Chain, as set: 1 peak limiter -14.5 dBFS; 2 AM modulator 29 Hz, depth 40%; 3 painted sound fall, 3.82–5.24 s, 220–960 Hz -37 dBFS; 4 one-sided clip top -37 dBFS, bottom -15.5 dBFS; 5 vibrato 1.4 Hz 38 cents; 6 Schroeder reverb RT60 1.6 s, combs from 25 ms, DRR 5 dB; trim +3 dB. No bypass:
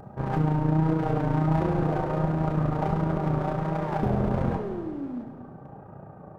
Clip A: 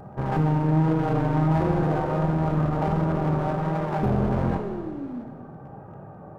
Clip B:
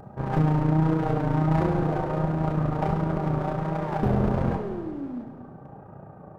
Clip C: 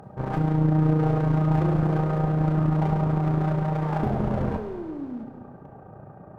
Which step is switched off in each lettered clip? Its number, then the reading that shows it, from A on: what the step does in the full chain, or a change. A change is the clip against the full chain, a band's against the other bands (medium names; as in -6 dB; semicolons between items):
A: 2, loudness change +2.0 LU; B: 1, momentary loudness spread change +1 LU; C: 5, 125 Hz band +3.5 dB